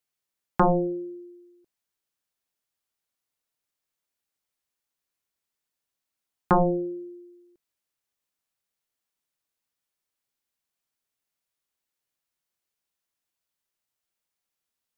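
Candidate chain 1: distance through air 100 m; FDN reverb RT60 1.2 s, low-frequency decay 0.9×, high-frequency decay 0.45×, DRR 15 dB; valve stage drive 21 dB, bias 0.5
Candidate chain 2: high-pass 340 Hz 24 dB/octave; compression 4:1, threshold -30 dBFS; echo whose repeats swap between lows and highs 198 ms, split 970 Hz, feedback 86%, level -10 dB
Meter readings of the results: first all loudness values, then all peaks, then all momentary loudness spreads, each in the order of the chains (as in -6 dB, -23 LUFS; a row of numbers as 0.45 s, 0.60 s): -30.5 LUFS, -39.0 LUFS; -18.0 dBFS, -14.0 dBFS; 19 LU, 24 LU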